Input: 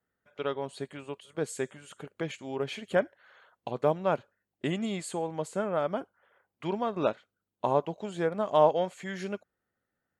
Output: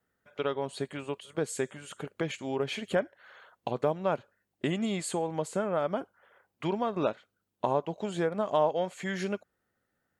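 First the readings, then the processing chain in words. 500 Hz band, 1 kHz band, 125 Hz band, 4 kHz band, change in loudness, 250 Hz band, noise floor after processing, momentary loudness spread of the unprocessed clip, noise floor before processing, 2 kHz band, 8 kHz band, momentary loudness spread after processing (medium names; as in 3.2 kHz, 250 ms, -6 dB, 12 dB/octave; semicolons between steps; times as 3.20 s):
-1.0 dB, -1.5 dB, +0.5 dB, +2.0 dB, -1.0 dB, +1.0 dB, -81 dBFS, 14 LU, under -85 dBFS, +0.5 dB, +3.0 dB, 9 LU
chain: compression 2:1, threshold -33 dBFS, peak gain reduction 9.5 dB; trim +4.5 dB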